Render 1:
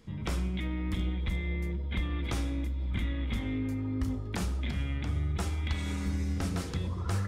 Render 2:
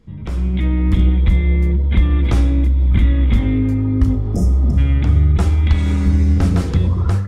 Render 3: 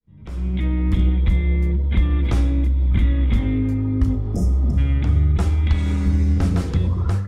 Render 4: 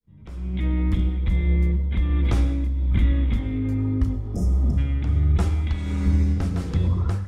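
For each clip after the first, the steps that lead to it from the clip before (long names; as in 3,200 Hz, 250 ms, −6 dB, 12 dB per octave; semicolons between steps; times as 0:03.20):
healed spectral selection 0:04.22–0:04.75, 720–5,000 Hz before; spectral tilt −2 dB per octave; automatic gain control gain up to 12 dB
fade in at the beginning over 0.51 s; level −4 dB
amplitude tremolo 1.3 Hz, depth 43%; convolution reverb RT60 0.90 s, pre-delay 92 ms, DRR 14.5 dB; level −1.5 dB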